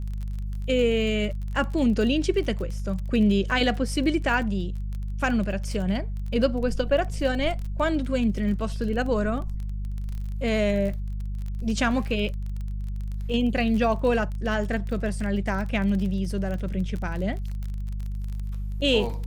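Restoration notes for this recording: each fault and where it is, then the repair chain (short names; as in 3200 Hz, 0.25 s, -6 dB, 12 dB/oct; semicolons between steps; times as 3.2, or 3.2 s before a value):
crackle 24/s -31 dBFS
hum 50 Hz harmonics 4 -30 dBFS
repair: de-click; de-hum 50 Hz, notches 4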